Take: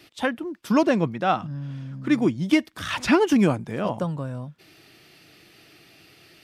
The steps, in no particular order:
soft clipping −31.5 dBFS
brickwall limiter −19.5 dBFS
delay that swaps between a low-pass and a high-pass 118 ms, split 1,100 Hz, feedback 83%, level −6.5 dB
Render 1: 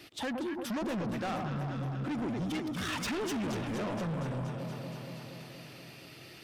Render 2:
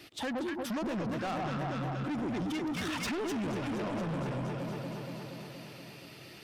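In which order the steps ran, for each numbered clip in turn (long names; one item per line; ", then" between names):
brickwall limiter, then delay that swaps between a low-pass and a high-pass, then soft clipping
delay that swaps between a low-pass and a high-pass, then brickwall limiter, then soft clipping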